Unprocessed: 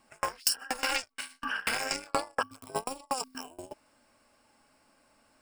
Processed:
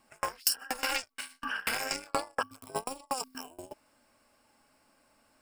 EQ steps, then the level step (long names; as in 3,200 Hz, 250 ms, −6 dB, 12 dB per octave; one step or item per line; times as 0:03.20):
parametric band 13,000 Hz +9 dB 0.26 octaves
−1.5 dB